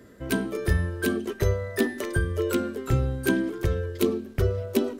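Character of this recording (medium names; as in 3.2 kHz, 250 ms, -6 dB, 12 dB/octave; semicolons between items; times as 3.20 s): noise floor -46 dBFS; spectral tilt -6.5 dB/octave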